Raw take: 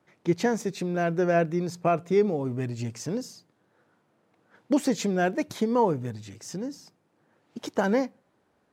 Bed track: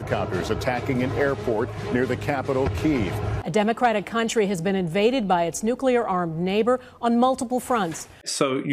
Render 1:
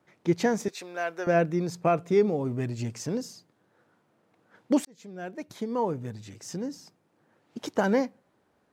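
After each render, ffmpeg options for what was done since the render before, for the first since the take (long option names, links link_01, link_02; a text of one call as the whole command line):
ffmpeg -i in.wav -filter_complex "[0:a]asettb=1/sr,asplit=3[link_01][link_02][link_03];[link_01]atrim=end=0.684[link_04];[link_02]atrim=start=0.68:end=1.27,asetpts=PTS-STARTPTS,afade=type=in:duration=0.004:curve=qsin,afade=type=out:start_time=0.586:duration=0.004:curve=qsin,highpass=700[link_05];[link_03]atrim=start=1.266[link_06];[link_04][link_05]acrossfade=duration=0.004:curve1=hsin:curve2=qsin[link_07];[link_07][link_06]acrossfade=duration=0.004:curve1=qsin:curve2=hsin,asplit=2[link_08][link_09];[link_08]atrim=end=4.85,asetpts=PTS-STARTPTS,afade=type=out:start_time=4.846:duration=0.004:curve=hsin[link_10];[link_09]atrim=start=4.85,asetpts=PTS-STARTPTS,afade=type=in:duration=1.76[link_11];[link_10][link_11]concat=n=2:v=0:a=1" out.wav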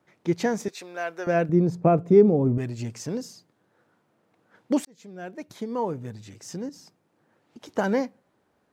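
ffmpeg -i in.wav -filter_complex "[0:a]asettb=1/sr,asplit=3[link_01][link_02][link_03];[link_01]atrim=end=1.494[link_04];[link_02]atrim=start=1.49:end=2.58,asetpts=PTS-STARTPTS,afade=type=in:duration=0.004:curve=qsin,afade=type=out:start_time=1.086:duration=0.004:curve=qsin,tiltshelf=frequency=970:gain=9.5[link_05];[link_03]atrim=start=2.576[link_06];[link_04][link_05]acrossfade=duration=0.004:curve1=hsin:curve2=qsin[link_07];[link_07][link_06]acrossfade=duration=0.004:curve1=qsin:curve2=hsin,asettb=1/sr,asplit=3[link_08][link_09][link_10];[link_08]atrim=end=6.694[link_11];[link_09]atrim=start=6.69:end=7.69,asetpts=PTS-STARTPTS,afade=type=in:duration=0.004:curve=qsin,afade=type=out:start_time=0.996:duration=0.004:curve=qsin,acompressor=threshold=-41dB:ratio=6:attack=3.2:release=140:knee=1:detection=peak[link_12];[link_10]atrim=start=7.686[link_13];[link_11][link_12]acrossfade=duration=0.004:curve1=hsin:curve2=qsin[link_14];[link_14][link_13]acrossfade=duration=0.004:curve1=qsin:curve2=hsin" out.wav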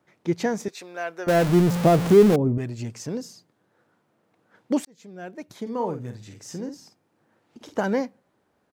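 ffmpeg -i in.wav -filter_complex "[0:a]asettb=1/sr,asplit=3[link_01][link_02][link_03];[link_01]atrim=end=1.284[link_04];[link_02]atrim=start=1.28:end=2.36,asetpts=PTS-STARTPTS,afade=type=in:duration=0.004:curve=qsin,afade=type=out:start_time=1.076:duration=0.004:curve=qsin,aeval=exprs='val(0)+0.5*0.0891*sgn(val(0))':channel_layout=same[link_05];[link_03]atrim=start=2.356[link_06];[link_04][link_05]acrossfade=duration=0.004:curve1=hsin:curve2=qsin[link_07];[link_07][link_06]acrossfade=duration=0.004:curve1=qsin:curve2=hsin,asplit=3[link_08][link_09][link_10];[link_08]afade=type=out:start_time=5.65:duration=0.02[link_11];[link_09]asplit=2[link_12][link_13];[link_13]adelay=49,volume=-8dB[link_14];[link_12][link_14]amix=inputs=2:normalize=0,afade=type=in:start_time=5.65:duration=0.02,afade=type=out:start_time=7.79:duration=0.02[link_15];[link_10]afade=type=in:start_time=7.79:duration=0.02[link_16];[link_11][link_15][link_16]amix=inputs=3:normalize=0" out.wav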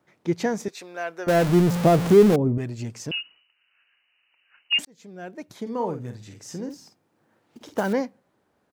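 ffmpeg -i in.wav -filter_complex "[0:a]asettb=1/sr,asplit=3[link_01][link_02][link_03];[link_01]atrim=end=3.114[link_04];[link_02]atrim=start=3.11:end=4.79,asetpts=PTS-STARTPTS,afade=type=in:duration=0.004:curve=qsin,afade=type=out:start_time=1.676:duration=0.004:curve=qsin,lowpass=frequency=2600:width_type=q:width=0.5098,lowpass=frequency=2600:width_type=q:width=0.6013,lowpass=frequency=2600:width_type=q:width=0.9,lowpass=frequency=2600:width_type=q:width=2.563,afreqshift=-3100[link_05];[link_03]atrim=start=4.786[link_06];[link_04][link_05]acrossfade=duration=0.004:curve1=hsin:curve2=qsin[link_07];[link_07][link_06]acrossfade=duration=0.004:curve1=qsin:curve2=hsin,asettb=1/sr,asplit=3[link_08][link_09][link_10];[link_08]atrim=end=6.704[link_11];[link_09]atrim=start=6.7:end=7.93,asetpts=PTS-STARTPTS,afade=type=in:duration=0.004:curve=qsin,afade=type=out:start_time=1.226:duration=0.004:curve=qsin,acrusher=bits=5:mode=log:mix=0:aa=0.000001[link_12];[link_10]atrim=start=7.926[link_13];[link_11][link_12]acrossfade=duration=0.004:curve1=hsin:curve2=qsin[link_14];[link_14][link_13]acrossfade=duration=0.004:curve1=qsin:curve2=hsin" out.wav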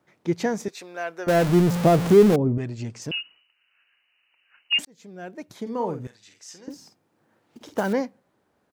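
ffmpeg -i in.wav -filter_complex "[0:a]asettb=1/sr,asplit=3[link_01][link_02][link_03];[link_01]atrim=end=2.394[link_04];[link_02]atrim=start=2.39:end=3.02,asetpts=PTS-STARTPTS,afade=type=in:duration=0.004:curve=qsin,afade=type=out:start_time=0.626:duration=0.004:curve=qsin,lowpass=7200[link_05];[link_03]atrim=start=3.016[link_06];[link_04][link_05]acrossfade=duration=0.004:curve1=hsin:curve2=qsin[link_07];[link_07][link_06]acrossfade=duration=0.004:curve1=qsin:curve2=hsin,asettb=1/sr,asplit=3[link_08][link_09][link_10];[link_08]atrim=end=6.074[link_11];[link_09]atrim=start=6.07:end=6.68,asetpts=PTS-STARTPTS,afade=type=in:duration=0.004:curve=qsin,afade=type=out:start_time=0.606:duration=0.004:curve=qsin,bandpass=frequency=3900:width_type=q:width=0.55[link_12];[link_10]atrim=start=6.676[link_13];[link_11][link_12]acrossfade=duration=0.004:curve1=hsin:curve2=qsin[link_14];[link_14][link_13]acrossfade=duration=0.004:curve1=qsin:curve2=hsin" out.wav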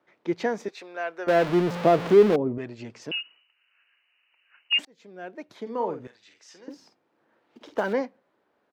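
ffmpeg -i in.wav -filter_complex "[0:a]acrossover=split=260 4500:gain=0.2 1 0.158[link_01][link_02][link_03];[link_01][link_02][link_03]amix=inputs=3:normalize=0,bandreject=frequency=780:width=26" out.wav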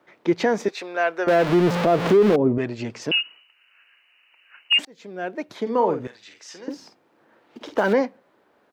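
ffmpeg -i in.wav -filter_complex "[0:a]asplit=2[link_01][link_02];[link_02]acontrast=70,volume=-1dB[link_03];[link_01][link_03]amix=inputs=2:normalize=0,alimiter=limit=-9.5dB:level=0:latency=1:release=124" out.wav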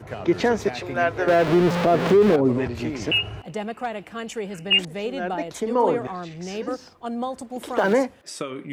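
ffmpeg -i in.wav -i bed.wav -filter_complex "[1:a]volume=-9dB[link_01];[0:a][link_01]amix=inputs=2:normalize=0" out.wav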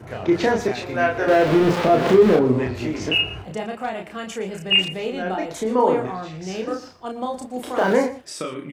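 ffmpeg -i in.wav -filter_complex "[0:a]asplit=2[link_01][link_02];[link_02]adelay=32,volume=-3dB[link_03];[link_01][link_03]amix=inputs=2:normalize=0,asplit=2[link_04][link_05];[link_05]adelay=116.6,volume=-15dB,highshelf=frequency=4000:gain=-2.62[link_06];[link_04][link_06]amix=inputs=2:normalize=0" out.wav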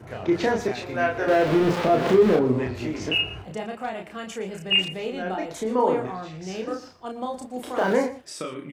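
ffmpeg -i in.wav -af "volume=-3.5dB" out.wav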